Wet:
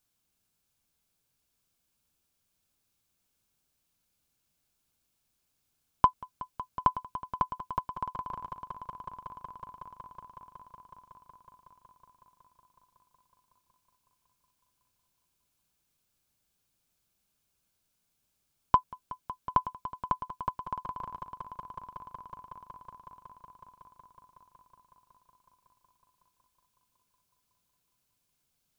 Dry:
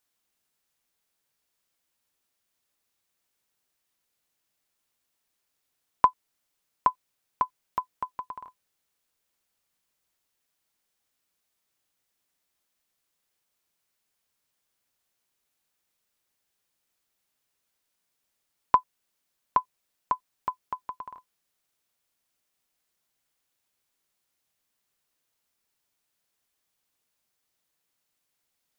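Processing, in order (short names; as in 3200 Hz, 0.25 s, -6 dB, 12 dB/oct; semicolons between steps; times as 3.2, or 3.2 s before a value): in parallel at -11 dB: soft clip -14 dBFS, distortion -12 dB; on the sum: tone controls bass +12 dB, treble +2 dB; notch 1900 Hz, Q 7.7; swelling echo 0.185 s, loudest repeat 5, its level -16 dB; gain -4 dB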